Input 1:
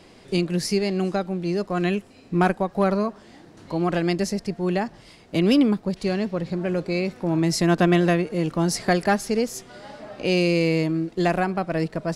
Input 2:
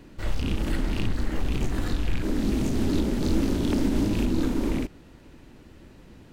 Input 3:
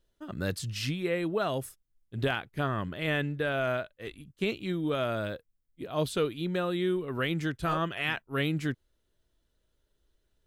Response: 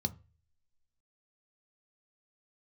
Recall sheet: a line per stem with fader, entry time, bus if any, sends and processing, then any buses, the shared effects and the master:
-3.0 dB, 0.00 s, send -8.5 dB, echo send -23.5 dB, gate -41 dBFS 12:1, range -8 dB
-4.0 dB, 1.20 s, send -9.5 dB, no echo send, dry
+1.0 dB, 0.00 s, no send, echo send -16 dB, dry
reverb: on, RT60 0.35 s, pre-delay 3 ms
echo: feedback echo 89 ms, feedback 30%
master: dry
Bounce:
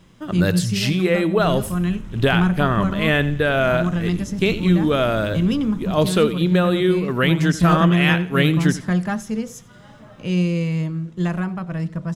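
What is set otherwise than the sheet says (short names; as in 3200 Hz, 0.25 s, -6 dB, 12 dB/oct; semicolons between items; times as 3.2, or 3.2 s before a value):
stem 1: missing gate -41 dBFS 12:1, range -8 dB; stem 2 -4.0 dB -> -10.5 dB; stem 3 +1.0 dB -> +11.0 dB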